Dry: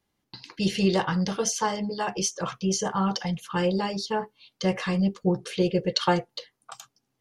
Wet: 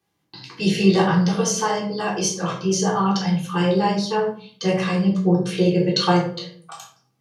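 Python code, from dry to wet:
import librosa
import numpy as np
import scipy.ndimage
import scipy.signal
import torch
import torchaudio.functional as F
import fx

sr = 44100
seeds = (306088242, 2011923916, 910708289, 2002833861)

y = scipy.signal.sosfilt(scipy.signal.butter(2, 120.0, 'highpass', fs=sr, output='sos'), x)
y = fx.room_shoebox(y, sr, seeds[0], volume_m3=520.0, walls='furnished', distance_m=3.6)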